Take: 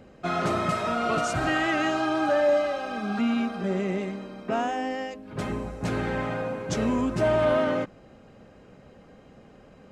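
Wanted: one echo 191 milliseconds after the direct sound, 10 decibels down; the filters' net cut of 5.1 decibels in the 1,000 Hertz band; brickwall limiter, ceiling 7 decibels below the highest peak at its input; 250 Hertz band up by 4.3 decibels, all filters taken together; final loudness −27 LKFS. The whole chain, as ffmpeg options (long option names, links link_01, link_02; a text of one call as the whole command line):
ffmpeg -i in.wav -af "equalizer=frequency=250:width_type=o:gain=5.5,equalizer=frequency=1000:width_type=o:gain=-8,alimiter=limit=-20dB:level=0:latency=1,aecho=1:1:191:0.316,volume=1.5dB" out.wav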